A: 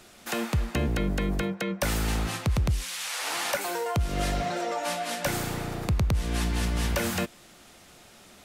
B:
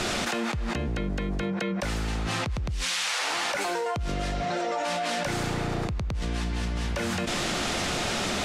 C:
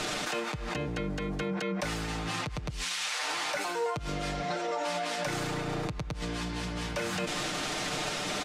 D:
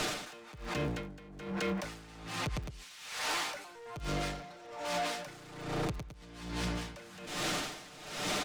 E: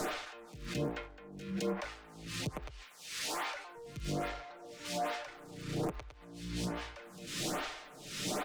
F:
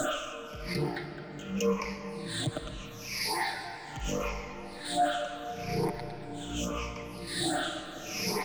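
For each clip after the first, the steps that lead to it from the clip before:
low-pass 6.7 kHz 12 dB/octave; level flattener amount 100%; trim -7.5 dB
bass shelf 140 Hz -6.5 dB; peak limiter -23 dBFS, peak gain reduction 6 dB; comb 6.6 ms, depth 59%; trim -2 dB
crackle 36 per s -40 dBFS; overload inside the chain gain 32 dB; logarithmic tremolo 1.2 Hz, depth 19 dB; trim +2.5 dB
pre-echo 195 ms -19.5 dB; lamp-driven phase shifter 1.2 Hz; trim +1.5 dB
drifting ripple filter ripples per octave 0.84, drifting -0.78 Hz, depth 22 dB; on a send at -8 dB: reverberation RT60 4.9 s, pre-delay 80 ms

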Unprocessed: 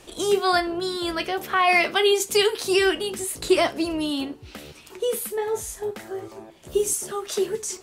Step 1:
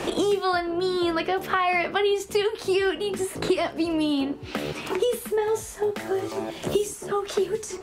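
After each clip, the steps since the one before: treble shelf 3.9 kHz -10.5 dB; three bands compressed up and down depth 100%; trim -1.5 dB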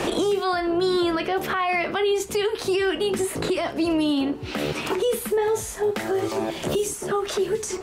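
peak limiter -20.5 dBFS, peak gain reduction 10.5 dB; trim +5 dB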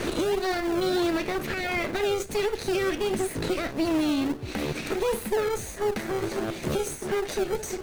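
comb filter that takes the minimum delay 0.47 ms; in parallel at -7.5 dB: decimation with a swept rate 33×, swing 100% 1.5 Hz; on the sum: trim -4 dB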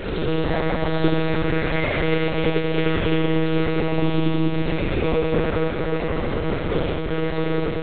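Schroeder reverb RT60 3.6 s, combs from 33 ms, DRR -6 dB; monotone LPC vocoder at 8 kHz 160 Hz

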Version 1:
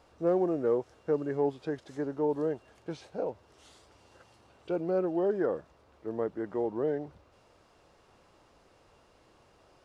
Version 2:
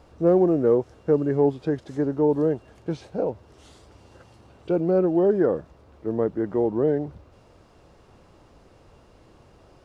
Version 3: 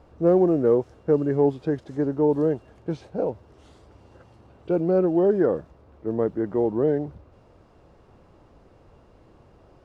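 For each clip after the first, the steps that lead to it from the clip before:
bass shelf 390 Hz +10.5 dB; trim +3.5 dB
tape noise reduction on one side only decoder only

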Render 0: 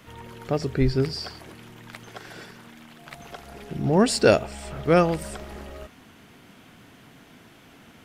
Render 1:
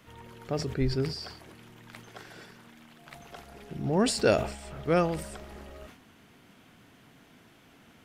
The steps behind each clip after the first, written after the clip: decay stretcher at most 91 dB/s; trim -6.5 dB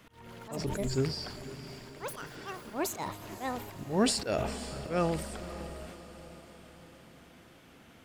slow attack 201 ms; ever faster or slower copies 135 ms, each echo +7 st, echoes 2, each echo -6 dB; echo that smears into a reverb 532 ms, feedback 54%, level -14 dB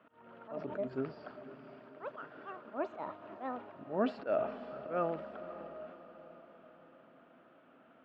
cabinet simulation 220–2600 Hz, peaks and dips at 260 Hz +5 dB, 620 Hz +10 dB, 1.3 kHz +8 dB, 2.1 kHz -7 dB; trim -7.5 dB

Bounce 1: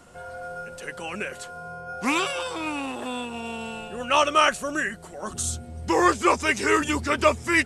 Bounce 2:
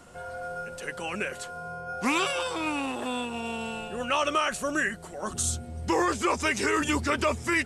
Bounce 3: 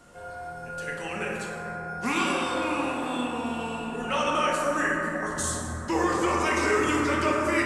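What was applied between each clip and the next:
peak limiter -15.5 dBFS, peak gain reduction 9.5 dB
plate-style reverb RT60 3.9 s, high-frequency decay 0.25×, DRR -4 dB; trim -4 dB

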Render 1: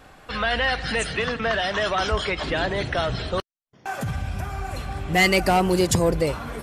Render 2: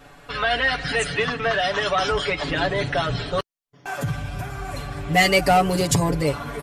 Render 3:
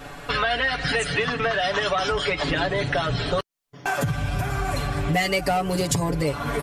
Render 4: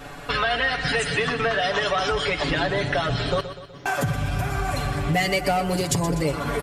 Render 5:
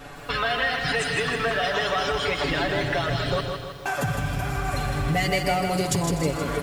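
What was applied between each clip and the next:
comb 7 ms, depth 90%; trim -1 dB
compression 5:1, threshold -30 dBFS, peak gain reduction 16 dB; trim +8.5 dB
feedback delay 124 ms, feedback 53%, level -12 dB
bit-crushed delay 158 ms, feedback 55%, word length 8-bit, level -5.5 dB; trim -2.5 dB

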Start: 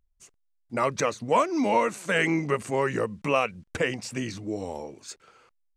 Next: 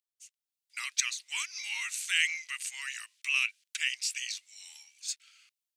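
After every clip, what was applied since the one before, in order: inverse Chebyshev high-pass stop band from 420 Hz, stop band 80 dB; level rider gain up to 7 dB; trim -1 dB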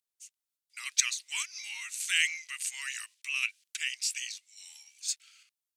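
peaking EQ 12 kHz +5 dB 2 oct; random-step tremolo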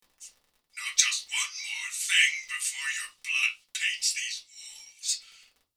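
crackle 27 per s -47 dBFS; reverberation RT60 0.25 s, pre-delay 3 ms, DRR -2.5 dB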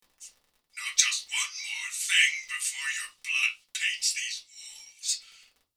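no audible change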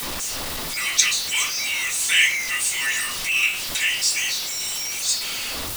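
jump at every zero crossing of -25.5 dBFS; trim +3 dB

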